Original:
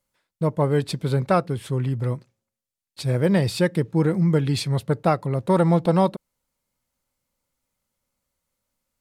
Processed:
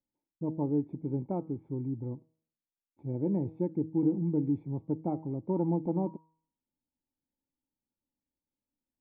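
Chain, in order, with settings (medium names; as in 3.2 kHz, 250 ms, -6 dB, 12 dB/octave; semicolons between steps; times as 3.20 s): cascade formant filter u; peaking EQ 2.3 kHz +3.5 dB 0.23 oct; de-hum 159.3 Hz, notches 13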